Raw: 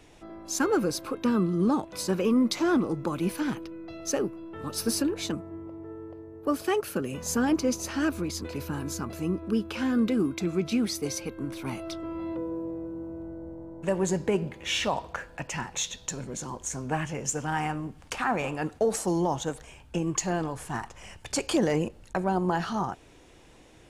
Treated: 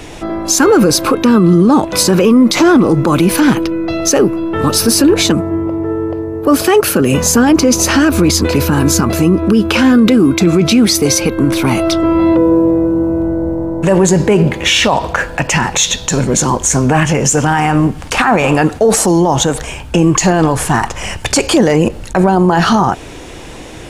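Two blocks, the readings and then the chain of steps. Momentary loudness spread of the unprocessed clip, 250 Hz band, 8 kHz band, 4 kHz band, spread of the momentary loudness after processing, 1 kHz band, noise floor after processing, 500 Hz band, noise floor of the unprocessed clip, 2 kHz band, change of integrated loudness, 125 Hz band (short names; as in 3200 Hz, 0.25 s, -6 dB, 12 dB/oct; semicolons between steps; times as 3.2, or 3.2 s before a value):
12 LU, +18.0 dB, +19.5 dB, +19.5 dB, 8 LU, +17.5 dB, -29 dBFS, +17.5 dB, -53 dBFS, +18.5 dB, +18.0 dB, +19.5 dB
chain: maximiser +25 dB; gain -1 dB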